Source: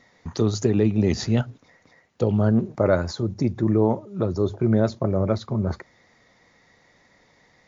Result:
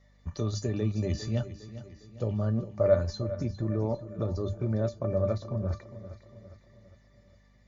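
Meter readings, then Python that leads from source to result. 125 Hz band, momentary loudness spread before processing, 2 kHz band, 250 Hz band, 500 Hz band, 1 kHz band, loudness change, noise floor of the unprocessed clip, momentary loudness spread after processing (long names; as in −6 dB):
−6.0 dB, 7 LU, −11.5 dB, −11.5 dB, −6.0 dB, −11.0 dB, −7.5 dB, −60 dBFS, 18 LU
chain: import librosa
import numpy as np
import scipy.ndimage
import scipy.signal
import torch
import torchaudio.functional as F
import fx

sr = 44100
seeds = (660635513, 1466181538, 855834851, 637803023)

p1 = fx.peak_eq(x, sr, hz=73.0, db=11.0, octaves=1.8)
p2 = fx.hum_notches(p1, sr, base_hz=50, count=4)
p3 = fx.level_steps(p2, sr, step_db=24)
p4 = p2 + (p3 * librosa.db_to_amplitude(3.0))
p5 = fx.comb_fb(p4, sr, f0_hz=590.0, decay_s=0.15, harmonics='all', damping=0.0, mix_pct=90)
p6 = fx.add_hum(p5, sr, base_hz=50, snr_db=30)
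y = p6 + fx.echo_feedback(p6, sr, ms=405, feedback_pct=49, wet_db=-14, dry=0)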